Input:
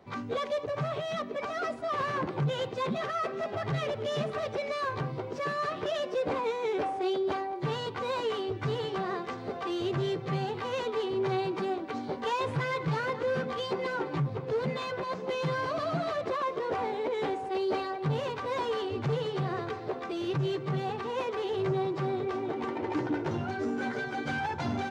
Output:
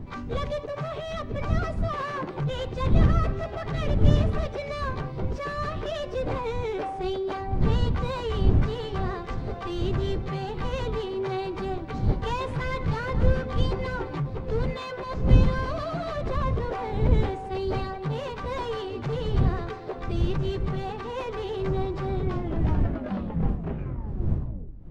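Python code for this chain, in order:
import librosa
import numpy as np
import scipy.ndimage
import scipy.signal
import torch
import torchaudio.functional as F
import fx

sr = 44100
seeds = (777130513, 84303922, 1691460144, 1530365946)

y = fx.tape_stop_end(x, sr, length_s=2.73)
y = fx.dmg_wind(y, sr, seeds[0], corner_hz=110.0, level_db=-27.0)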